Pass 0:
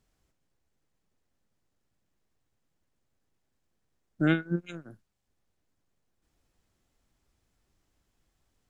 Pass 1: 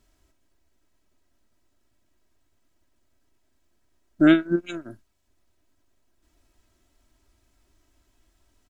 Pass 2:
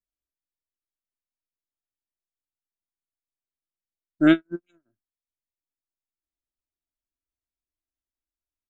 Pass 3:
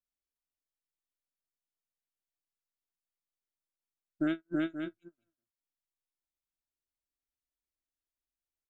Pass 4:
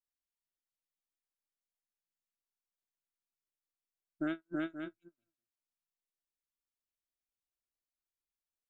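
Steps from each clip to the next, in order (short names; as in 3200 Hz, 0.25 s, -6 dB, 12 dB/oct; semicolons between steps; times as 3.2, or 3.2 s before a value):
comb 3.1 ms, depth 66%; gain +6.5 dB
upward expander 2.5:1, over -35 dBFS
on a send: tapped delay 0.326/0.527 s -4.5/-15.5 dB; on the sum: compressor 10:1, threshold -21 dBFS, peak gain reduction 10.5 dB; gain -6 dB
dynamic EQ 1000 Hz, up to +7 dB, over -50 dBFS, Q 0.98; gain -6 dB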